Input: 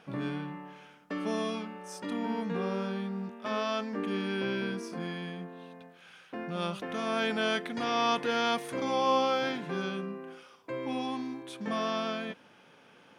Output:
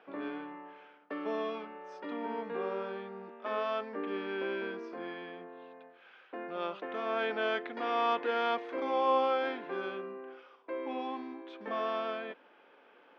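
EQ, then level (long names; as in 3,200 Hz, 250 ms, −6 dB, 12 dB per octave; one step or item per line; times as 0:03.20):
high-pass filter 310 Hz 24 dB per octave
Bessel low-pass filter 2,700 Hz, order 2
high-frequency loss of the air 160 metres
0.0 dB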